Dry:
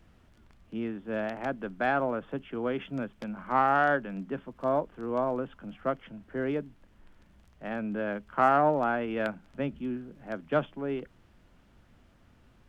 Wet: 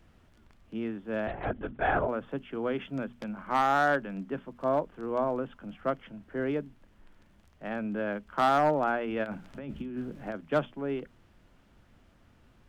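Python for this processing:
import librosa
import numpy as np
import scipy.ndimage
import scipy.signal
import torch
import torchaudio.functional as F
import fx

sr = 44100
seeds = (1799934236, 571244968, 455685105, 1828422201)

y = fx.over_compress(x, sr, threshold_db=-38.0, ratio=-1.0, at=(9.23, 10.34), fade=0.02)
y = np.clip(10.0 ** (17.0 / 20.0) * y, -1.0, 1.0) / 10.0 ** (17.0 / 20.0)
y = fx.hum_notches(y, sr, base_hz=60, count=4)
y = fx.lpc_vocoder(y, sr, seeds[0], excitation='whisper', order=16, at=(1.27, 2.08))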